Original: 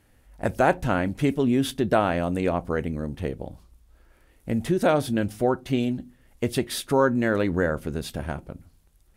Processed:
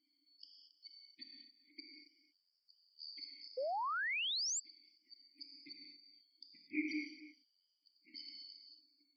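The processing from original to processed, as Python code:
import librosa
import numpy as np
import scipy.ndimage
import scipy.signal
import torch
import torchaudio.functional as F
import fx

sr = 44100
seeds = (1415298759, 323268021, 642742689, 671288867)

y = fx.band_shuffle(x, sr, order='4321')
y = fx.high_shelf(y, sr, hz=6200.0, db=5.0)
y = fx.gate_flip(y, sr, shuts_db=-15.0, range_db=-41)
y = fx.vowel_filter(y, sr, vowel='u')
y = fx.spec_gate(y, sr, threshold_db=-15, keep='strong')
y = fx.brickwall_bandstop(y, sr, low_hz=360.0, high_hz=1600.0)
y = fx.peak_eq(y, sr, hz=3400.0, db=-14.0, octaves=1.0)
y = y + 10.0 ** (-15.5 / 20.0) * np.pad(y, (int(274 * sr / 1000.0), 0))[:len(y)]
y = fx.rev_gated(y, sr, seeds[0], gate_ms=260, shape='flat', drr_db=-0.5)
y = fx.spec_paint(y, sr, seeds[1], shape='rise', start_s=3.57, length_s=1.03, low_hz=490.0, high_hz=7800.0, level_db=-50.0)
y = y * librosa.db_to_amplitude(12.0)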